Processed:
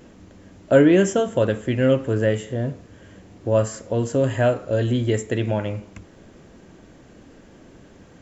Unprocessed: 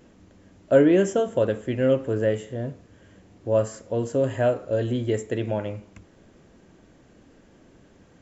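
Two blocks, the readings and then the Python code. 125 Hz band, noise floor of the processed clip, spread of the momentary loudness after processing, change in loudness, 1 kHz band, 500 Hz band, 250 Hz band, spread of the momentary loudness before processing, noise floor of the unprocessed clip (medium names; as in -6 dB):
+6.0 dB, -49 dBFS, 12 LU, +3.0 dB, +3.5 dB, +2.0 dB, +3.5 dB, 14 LU, -55 dBFS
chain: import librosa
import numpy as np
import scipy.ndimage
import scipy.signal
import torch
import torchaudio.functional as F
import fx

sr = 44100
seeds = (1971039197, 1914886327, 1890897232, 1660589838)

y = fx.dynamic_eq(x, sr, hz=490.0, q=0.76, threshold_db=-32.0, ratio=4.0, max_db=-5)
y = F.gain(torch.from_numpy(y), 6.5).numpy()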